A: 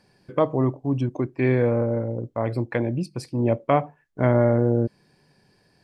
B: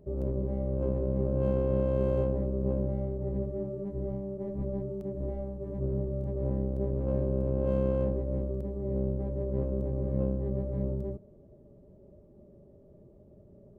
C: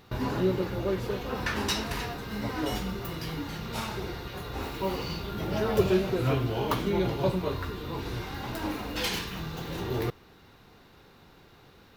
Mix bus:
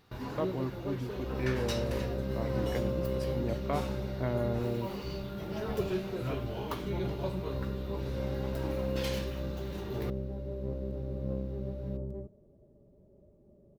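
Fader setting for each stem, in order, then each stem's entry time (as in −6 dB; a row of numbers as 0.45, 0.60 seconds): −13.5, −5.5, −9.0 decibels; 0.00, 1.10, 0.00 seconds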